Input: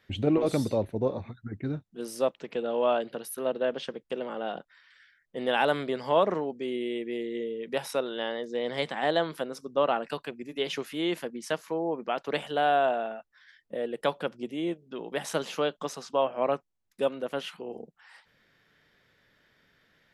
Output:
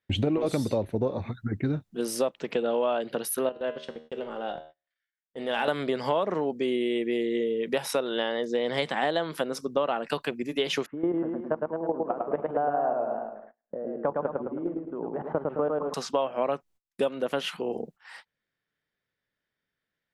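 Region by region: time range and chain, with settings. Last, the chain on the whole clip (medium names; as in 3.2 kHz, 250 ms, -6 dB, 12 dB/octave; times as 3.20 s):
3.49–5.68 s: transient shaper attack -4 dB, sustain -11 dB + feedback comb 78 Hz, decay 0.61 s, mix 70%
10.86–15.94 s: low-pass 1.2 kHz 24 dB/octave + level held to a coarse grid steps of 14 dB + modulated delay 107 ms, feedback 45%, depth 93 cents, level -3.5 dB
whole clip: gate -55 dBFS, range -28 dB; compression 6:1, threshold -31 dBFS; trim +8 dB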